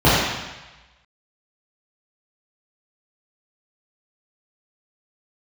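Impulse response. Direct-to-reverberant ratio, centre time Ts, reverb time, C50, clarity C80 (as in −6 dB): −11.0 dB, 95 ms, 1.1 s, −2.0 dB, 0.5 dB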